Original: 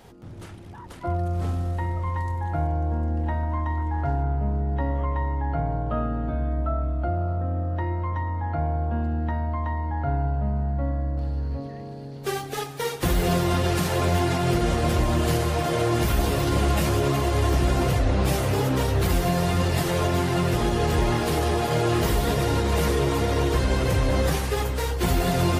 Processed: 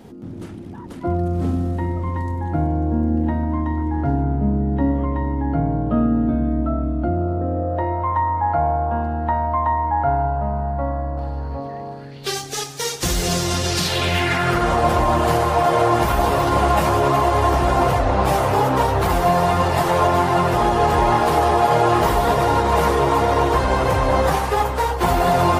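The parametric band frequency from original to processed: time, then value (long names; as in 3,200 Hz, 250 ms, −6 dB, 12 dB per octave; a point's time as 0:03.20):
parametric band +14.5 dB 1.5 octaves
0:07.13 250 Hz
0:08.14 900 Hz
0:11.91 900 Hz
0:12.37 6,100 Hz
0:13.66 6,100 Hz
0:14.77 900 Hz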